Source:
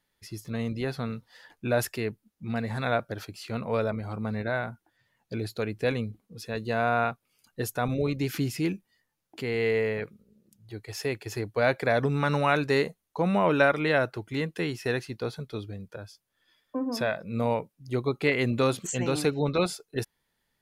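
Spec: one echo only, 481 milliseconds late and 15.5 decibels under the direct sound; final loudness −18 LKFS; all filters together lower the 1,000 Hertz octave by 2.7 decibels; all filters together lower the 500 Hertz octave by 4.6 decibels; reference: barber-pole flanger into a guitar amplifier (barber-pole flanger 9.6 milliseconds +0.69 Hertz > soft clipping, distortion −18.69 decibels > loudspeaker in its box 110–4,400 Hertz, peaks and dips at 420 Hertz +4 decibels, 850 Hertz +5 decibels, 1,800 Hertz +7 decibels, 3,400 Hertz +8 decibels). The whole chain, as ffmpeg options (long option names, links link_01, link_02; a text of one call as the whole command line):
ffmpeg -i in.wav -filter_complex "[0:a]equalizer=frequency=500:width_type=o:gain=-7.5,equalizer=frequency=1000:width_type=o:gain=-4.5,aecho=1:1:481:0.168,asplit=2[link_01][link_02];[link_02]adelay=9.6,afreqshift=0.69[link_03];[link_01][link_03]amix=inputs=2:normalize=1,asoftclip=threshold=-23.5dB,highpass=110,equalizer=frequency=420:width_type=q:width=4:gain=4,equalizer=frequency=850:width_type=q:width=4:gain=5,equalizer=frequency=1800:width_type=q:width=4:gain=7,equalizer=frequency=3400:width_type=q:width=4:gain=8,lowpass=frequency=4400:width=0.5412,lowpass=frequency=4400:width=1.3066,volume=16.5dB" out.wav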